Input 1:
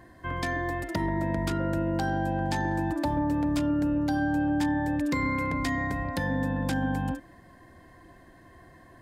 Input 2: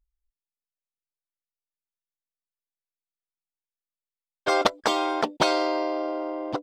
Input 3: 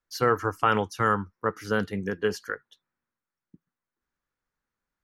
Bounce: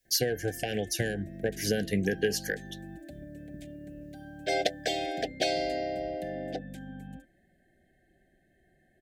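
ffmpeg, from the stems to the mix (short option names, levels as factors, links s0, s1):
-filter_complex "[0:a]equalizer=f=5000:t=o:w=0.38:g=-9,aecho=1:1:5.1:0.49,acrossover=split=430|3000[s0][s1][s2];[s1]acompressor=threshold=0.0126:ratio=3[s3];[s0][s3][s2]amix=inputs=3:normalize=0,adelay=50,volume=0.2[s4];[1:a]highpass=370,volume=0.631[s5];[2:a]acontrast=85,highshelf=f=4800:g=11.5,acompressor=threshold=0.0708:ratio=16,volume=1[s6];[s4][s5][s6]amix=inputs=3:normalize=0,asuperstop=centerf=1100:order=20:qfactor=1.4"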